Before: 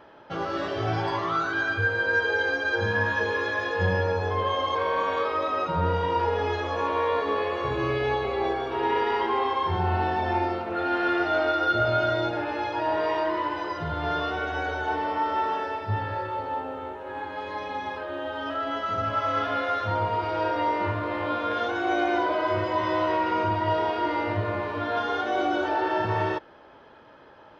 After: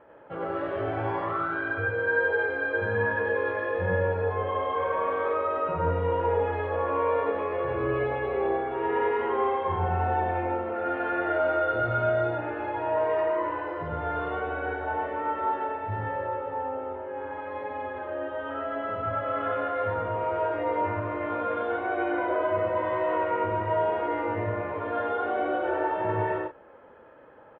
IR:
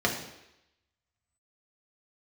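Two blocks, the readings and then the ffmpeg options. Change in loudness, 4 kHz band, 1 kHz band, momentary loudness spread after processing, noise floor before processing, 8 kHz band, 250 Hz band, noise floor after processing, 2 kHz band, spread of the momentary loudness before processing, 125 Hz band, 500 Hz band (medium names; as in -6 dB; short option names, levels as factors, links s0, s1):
-1.5 dB, under -10 dB, -2.5 dB, 7 LU, -50 dBFS, no reading, -3.5 dB, -44 dBFS, -3.0 dB, 6 LU, -2.5 dB, +0.5 dB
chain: -filter_complex "[0:a]lowpass=f=2400:w=0.5412,lowpass=f=2400:w=1.3066,equalizer=f=510:w=3.4:g=8,asplit=2[s0][s1];[s1]aecho=0:1:93.29|128.3:0.891|0.355[s2];[s0][s2]amix=inputs=2:normalize=0,volume=0.501"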